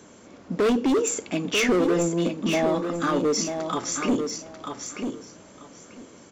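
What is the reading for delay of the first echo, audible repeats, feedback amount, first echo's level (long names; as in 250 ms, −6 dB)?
941 ms, 2, 18%, −6.5 dB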